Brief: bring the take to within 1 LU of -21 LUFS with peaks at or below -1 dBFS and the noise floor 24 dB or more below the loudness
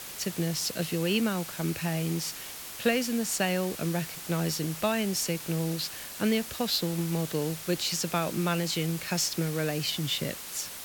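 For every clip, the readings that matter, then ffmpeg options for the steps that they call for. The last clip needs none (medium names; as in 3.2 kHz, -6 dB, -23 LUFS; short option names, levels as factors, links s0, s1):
noise floor -41 dBFS; noise floor target -54 dBFS; loudness -29.5 LUFS; peak level -12.5 dBFS; loudness target -21.0 LUFS
-> -af "afftdn=nr=13:nf=-41"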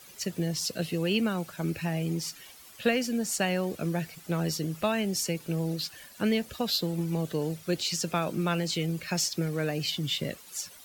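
noise floor -51 dBFS; noise floor target -54 dBFS
-> -af "afftdn=nr=6:nf=-51"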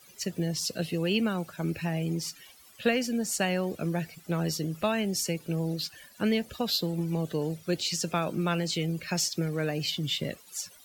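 noise floor -55 dBFS; loudness -30.0 LUFS; peak level -12.5 dBFS; loudness target -21.0 LUFS
-> -af "volume=2.82"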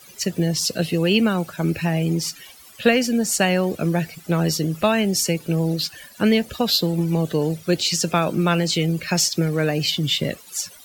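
loudness -21.0 LUFS; peak level -3.5 dBFS; noise floor -46 dBFS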